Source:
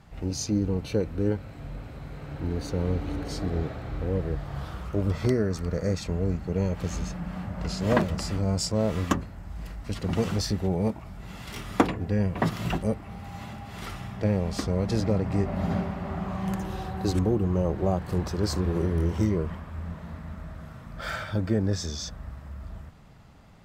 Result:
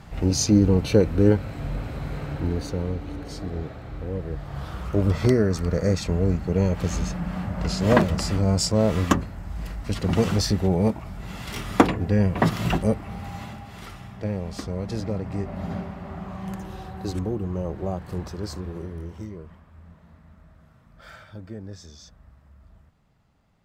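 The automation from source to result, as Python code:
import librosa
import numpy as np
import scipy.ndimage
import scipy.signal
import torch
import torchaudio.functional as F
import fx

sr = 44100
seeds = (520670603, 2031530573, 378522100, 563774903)

y = fx.gain(x, sr, db=fx.line((2.17, 8.5), (2.99, -2.5), (4.23, -2.5), (4.95, 5.0), (13.26, 5.0), (13.89, -3.5), (18.22, -3.5), (19.31, -12.5)))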